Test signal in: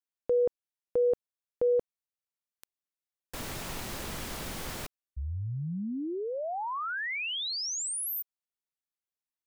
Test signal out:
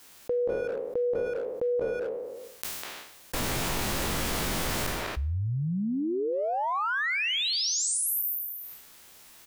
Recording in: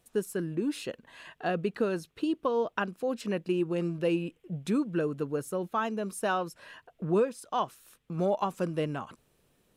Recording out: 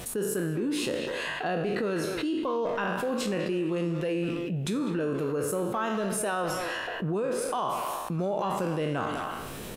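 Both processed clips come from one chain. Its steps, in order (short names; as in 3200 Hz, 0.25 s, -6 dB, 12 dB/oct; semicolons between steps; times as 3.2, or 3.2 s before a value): spectral trails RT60 0.54 s; limiter -23.5 dBFS; speakerphone echo 0.2 s, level -8 dB; fast leveller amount 70%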